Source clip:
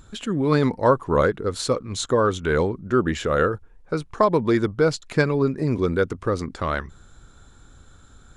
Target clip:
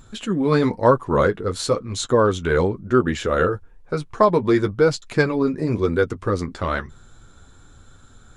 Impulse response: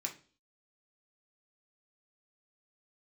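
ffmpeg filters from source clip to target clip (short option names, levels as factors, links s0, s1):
-af "flanger=delay=7.8:depth=3.6:regen=-29:speed=1:shape=sinusoidal,volume=1.78"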